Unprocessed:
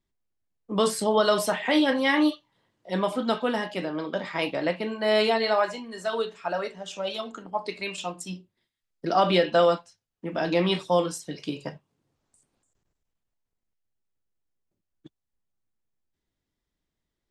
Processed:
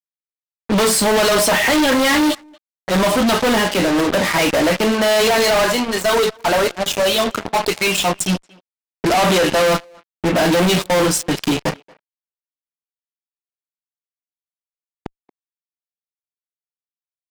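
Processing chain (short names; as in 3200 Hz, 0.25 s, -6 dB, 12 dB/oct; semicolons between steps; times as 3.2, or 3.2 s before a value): fuzz box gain 41 dB, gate -40 dBFS; 8.27–9.65 low-pass opened by the level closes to 2700 Hz, open at -17 dBFS; speakerphone echo 0.23 s, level -22 dB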